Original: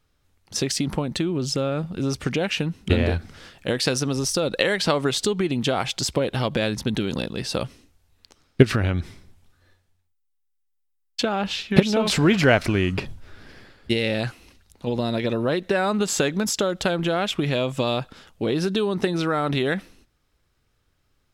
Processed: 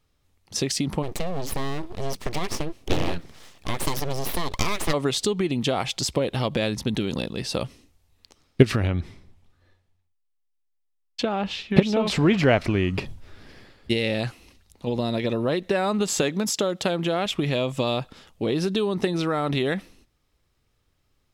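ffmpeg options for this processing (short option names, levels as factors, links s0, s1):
-filter_complex "[0:a]asplit=3[s0][s1][s2];[s0]afade=t=out:st=1.02:d=0.02[s3];[s1]aeval=exprs='abs(val(0))':c=same,afade=t=in:st=1.02:d=0.02,afade=t=out:st=4.92:d=0.02[s4];[s2]afade=t=in:st=4.92:d=0.02[s5];[s3][s4][s5]amix=inputs=3:normalize=0,asettb=1/sr,asplit=3[s6][s7][s8];[s6]atrim=end=8.874[s9];[s7]atrim=start=8.87:end=12.94,asetpts=PTS-STARTPTS,afade=t=in:d=0.004:c=qsin,afade=t=out:st=4.066:d=0.004:c=qsin,highshelf=f=5500:g=-10.5[s10];[s8]atrim=start=12.936[s11];[s9][s10]acrossfade=d=0.004:c1=hsin:c2=qsin[s12];[s12][s11]acrossfade=d=0.004:c1=qsin:c2=hsin,asettb=1/sr,asplit=3[s13][s14][s15];[s13]atrim=end=16.224[s16];[s14]atrim=start=16.22:end=17.26,asetpts=PTS-STARTPTS,afade=t=in:d=0.004:c=qsin,afade=t=out:st=1.036:d=0.004:c=qsin,highpass=120[s17];[s15]atrim=start=17.256[s18];[s16][s17]acrossfade=d=0.004:c1=hsin:c2=qsin[s19];[s19][s18]acrossfade=d=0.004:c1=qsin:c2=hsin,equalizer=f=1500:t=o:w=0.27:g=-6,volume=0.891"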